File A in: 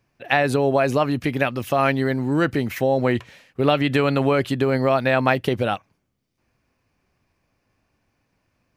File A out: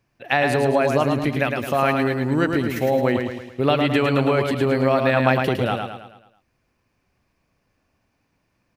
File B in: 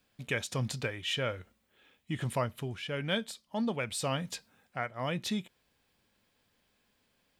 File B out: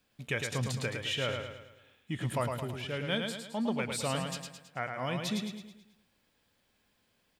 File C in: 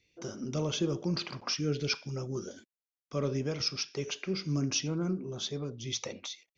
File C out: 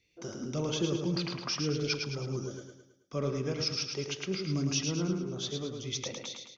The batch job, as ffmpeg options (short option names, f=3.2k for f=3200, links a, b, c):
-af "aecho=1:1:108|216|324|432|540|648:0.562|0.264|0.124|0.0584|0.0274|0.0129,volume=-1dB"